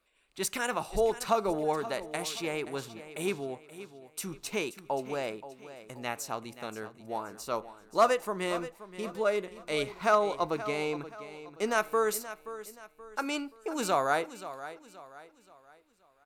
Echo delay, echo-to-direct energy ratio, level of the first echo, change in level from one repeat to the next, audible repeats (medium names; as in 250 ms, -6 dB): 527 ms, -13.5 dB, -14.0 dB, -8.0 dB, 3